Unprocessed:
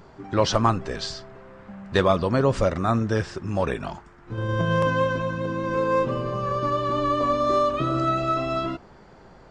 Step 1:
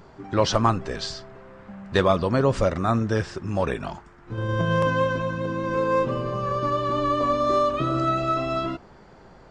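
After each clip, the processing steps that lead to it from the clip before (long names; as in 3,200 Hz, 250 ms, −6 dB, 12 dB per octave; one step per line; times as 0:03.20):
no processing that can be heard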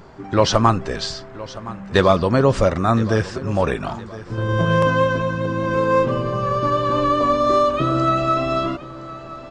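repeating echo 1,017 ms, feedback 38%, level −17 dB
level +5 dB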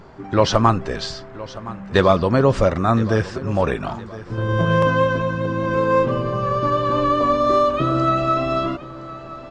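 high-shelf EQ 6,300 Hz −7 dB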